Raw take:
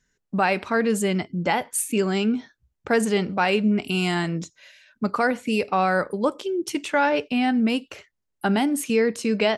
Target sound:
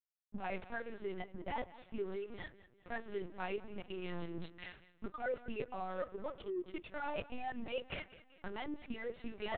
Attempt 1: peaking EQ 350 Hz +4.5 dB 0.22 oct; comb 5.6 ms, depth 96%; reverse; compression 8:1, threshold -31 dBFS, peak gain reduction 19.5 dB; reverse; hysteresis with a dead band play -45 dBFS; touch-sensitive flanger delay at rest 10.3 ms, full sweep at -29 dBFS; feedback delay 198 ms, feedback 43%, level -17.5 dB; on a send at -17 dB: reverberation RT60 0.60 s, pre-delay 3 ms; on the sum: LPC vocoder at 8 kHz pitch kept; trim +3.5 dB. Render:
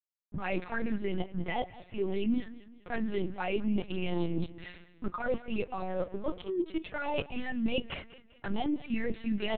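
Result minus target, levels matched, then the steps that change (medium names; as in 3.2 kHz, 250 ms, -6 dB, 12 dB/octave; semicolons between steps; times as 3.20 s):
compression: peak gain reduction -6.5 dB
change: compression 8:1, threshold -38.5 dBFS, peak gain reduction 26 dB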